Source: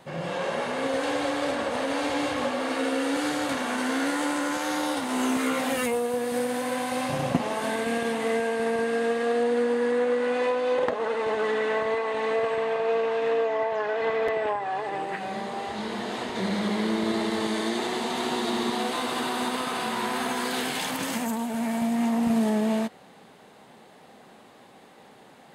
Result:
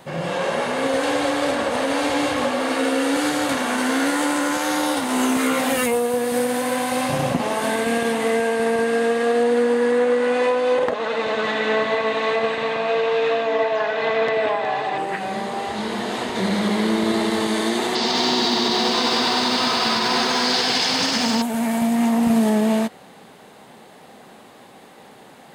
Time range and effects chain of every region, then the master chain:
10.94–14.98 speaker cabinet 100–7600 Hz, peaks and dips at 410 Hz -7 dB, 870 Hz -4 dB, 2500 Hz +3 dB, 3800 Hz +7 dB + echo with dull and thin repeats by turns 0.183 s, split 1000 Hz, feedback 52%, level -2.5 dB
17.95–21.42 synth low-pass 5100 Hz, resonance Q 5 + lo-fi delay 97 ms, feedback 80%, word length 9-bit, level -6.5 dB
whole clip: high shelf 10000 Hz +5.5 dB; maximiser +15 dB; gain -9 dB

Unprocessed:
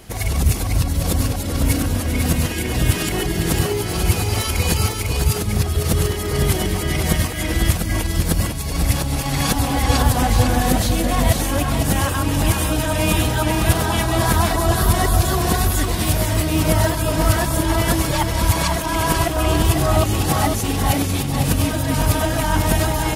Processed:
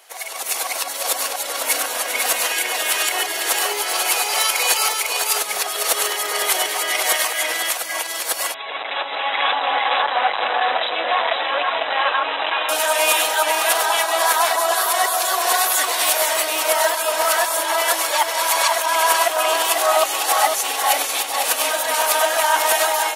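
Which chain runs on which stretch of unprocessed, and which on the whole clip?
8.54–12.69 hard clip -17.5 dBFS + brick-wall FIR low-pass 4000 Hz
whole clip: HPF 610 Hz 24 dB/oct; notch 5000 Hz, Q 25; AGC; gain -2.5 dB

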